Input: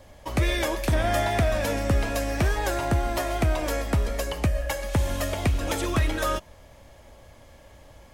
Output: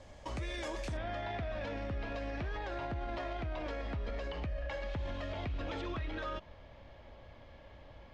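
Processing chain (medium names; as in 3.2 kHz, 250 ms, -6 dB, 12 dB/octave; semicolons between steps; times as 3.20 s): low-pass 7.9 kHz 24 dB/octave, from 0.97 s 4.1 kHz; peak limiter -27.5 dBFS, peak gain reduction 13.5 dB; trim -4 dB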